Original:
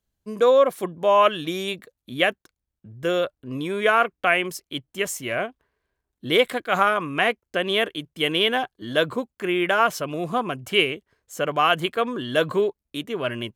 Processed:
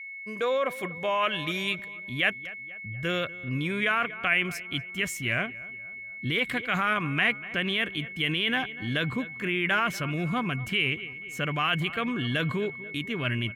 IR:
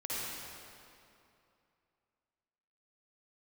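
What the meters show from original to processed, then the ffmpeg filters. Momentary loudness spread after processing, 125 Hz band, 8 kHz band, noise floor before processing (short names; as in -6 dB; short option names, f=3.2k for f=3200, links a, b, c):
9 LU, +4.0 dB, -6.0 dB, -84 dBFS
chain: -filter_complex "[0:a]asplit=2[a][b];[b]adelay=241,lowpass=f=2.4k:p=1,volume=-20dB,asplit=2[c][d];[d]adelay=241,lowpass=f=2.4k:p=1,volume=0.53,asplit=2[e][f];[f]adelay=241,lowpass=f=2.4k:p=1,volume=0.53,asplit=2[g][h];[h]adelay=241,lowpass=f=2.4k:p=1,volume=0.53[i];[c][e][g][i]amix=inputs=4:normalize=0[j];[a][j]amix=inputs=2:normalize=0,aeval=exprs='val(0)+0.00794*sin(2*PI*2200*n/s)':c=same,asubboost=boost=7:cutoff=190,alimiter=limit=-14.5dB:level=0:latency=1:release=13,equalizer=f=2.2k:t=o:w=1.4:g=11.5,volume=-7dB"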